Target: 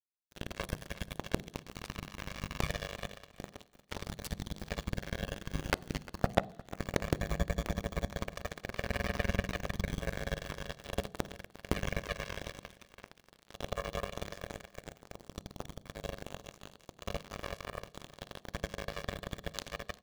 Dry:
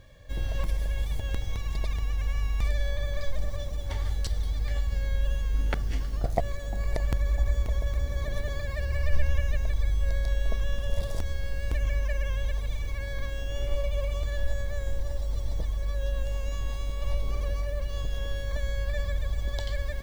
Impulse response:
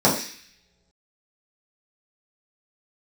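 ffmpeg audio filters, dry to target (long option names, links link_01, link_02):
-filter_complex "[0:a]highpass=54,acompressor=threshold=-26dB:ratio=12,acrusher=bits=3:mix=0:aa=0.5,aecho=1:1:353|706:0.119|0.0309,asplit=2[link_01][link_02];[1:a]atrim=start_sample=2205,asetrate=33075,aresample=44100[link_03];[link_02][link_03]afir=irnorm=-1:irlink=0,volume=-39.5dB[link_04];[link_01][link_04]amix=inputs=2:normalize=0,volume=4dB"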